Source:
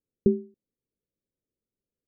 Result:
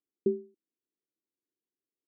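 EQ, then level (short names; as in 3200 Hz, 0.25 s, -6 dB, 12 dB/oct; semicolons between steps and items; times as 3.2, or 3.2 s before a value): band-pass 330 Hz, Q 3.6; 0.0 dB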